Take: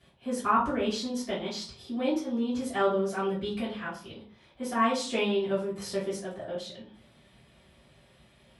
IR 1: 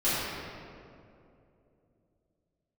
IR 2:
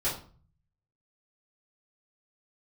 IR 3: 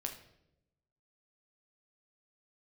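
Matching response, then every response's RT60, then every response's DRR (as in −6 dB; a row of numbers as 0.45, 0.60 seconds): 2; 2.7, 0.40, 0.85 seconds; −13.5, −10.5, 3.0 decibels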